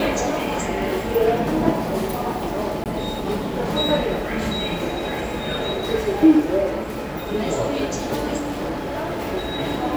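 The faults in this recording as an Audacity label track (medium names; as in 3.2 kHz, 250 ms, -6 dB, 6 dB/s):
2.840000	2.860000	dropout 18 ms
8.370000	9.220000	clipped -22.5 dBFS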